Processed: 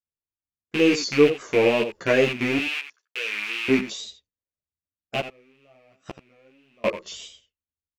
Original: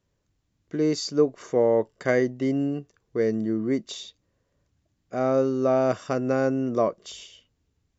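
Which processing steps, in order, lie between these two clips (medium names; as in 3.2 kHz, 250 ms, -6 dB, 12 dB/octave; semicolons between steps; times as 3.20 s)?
rattle on loud lows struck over -35 dBFS, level -17 dBFS; expander -44 dBFS; 2.58–3.69 s: high-pass 1.3 kHz 12 dB/octave; 5.20–6.85 s: inverted gate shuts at -18 dBFS, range -37 dB; on a send: delay 85 ms -11.5 dB; on the sum: wow and flutter 97 cents; three-phase chorus; trim +5.5 dB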